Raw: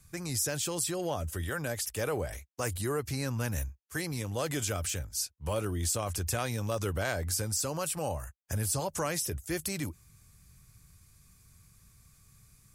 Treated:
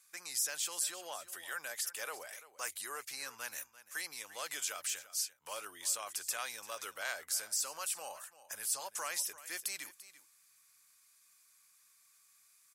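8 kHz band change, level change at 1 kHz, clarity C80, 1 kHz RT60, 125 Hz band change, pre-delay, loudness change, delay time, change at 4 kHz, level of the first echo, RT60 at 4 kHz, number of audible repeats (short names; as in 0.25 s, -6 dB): -2.5 dB, -6.5 dB, none, none, under -40 dB, none, -5.0 dB, 0.342 s, -2.5 dB, -16.0 dB, none, 1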